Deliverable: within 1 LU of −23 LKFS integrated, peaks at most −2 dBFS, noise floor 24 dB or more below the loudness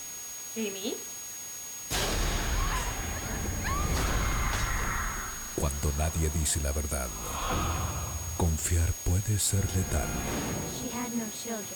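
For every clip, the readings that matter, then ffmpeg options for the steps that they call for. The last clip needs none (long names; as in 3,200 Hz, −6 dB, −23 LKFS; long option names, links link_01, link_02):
interfering tone 6,600 Hz; level of the tone −39 dBFS; background noise floor −40 dBFS; target noise floor −55 dBFS; integrated loudness −31.0 LKFS; sample peak −15.5 dBFS; target loudness −23.0 LKFS
→ -af "bandreject=frequency=6600:width=30"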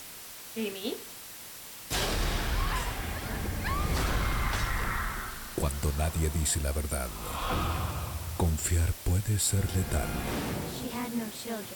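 interfering tone none found; background noise floor −45 dBFS; target noise floor −56 dBFS
→ -af "afftdn=noise_reduction=11:noise_floor=-45"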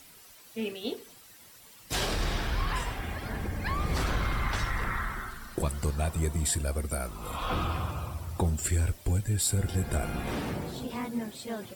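background noise floor −53 dBFS; target noise floor −56 dBFS
→ -af "afftdn=noise_reduction=6:noise_floor=-53"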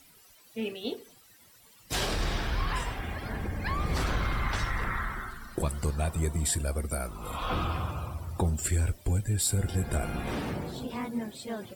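background noise floor −58 dBFS; integrated loudness −31.5 LKFS; sample peak −16.5 dBFS; target loudness −23.0 LKFS
→ -af "volume=8.5dB"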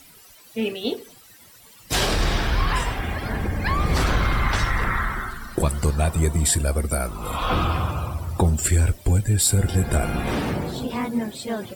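integrated loudness −23.0 LKFS; sample peak −8.0 dBFS; background noise floor −49 dBFS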